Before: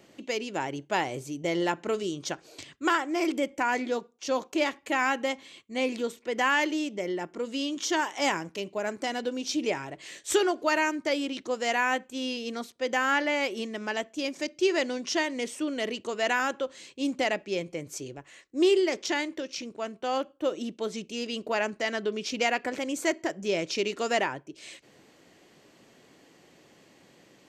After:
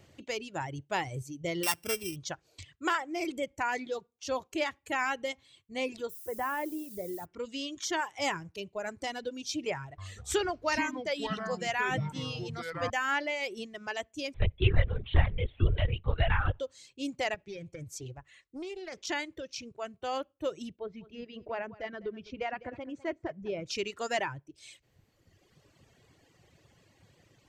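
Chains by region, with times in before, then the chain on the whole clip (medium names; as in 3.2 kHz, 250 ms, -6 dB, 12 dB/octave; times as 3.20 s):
1.63–2.16 s: sorted samples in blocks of 16 samples + treble shelf 4.5 kHz +11 dB
6.09–7.24 s: low-pass 1.1 kHz + added noise violet -42 dBFS
9.78–12.90 s: treble shelf 11 kHz -4.5 dB + ever faster or slower copies 198 ms, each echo -6 st, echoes 3, each echo -6 dB
14.34–16.60 s: LPC vocoder at 8 kHz whisper + three bands compressed up and down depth 40%
17.34–19.07 s: compression 8:1, threshold -31 dBFS + loudspeaker Doppler distortion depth 0.18 ms
20.76–23.66 s: tape spacing loss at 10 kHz 38 dB + delay 203 ms -10 dB
whole clip: reverb removal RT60 1.8 s; resonant low shelf 150 Hz +14 dB, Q 1.5; trim -3.5 dB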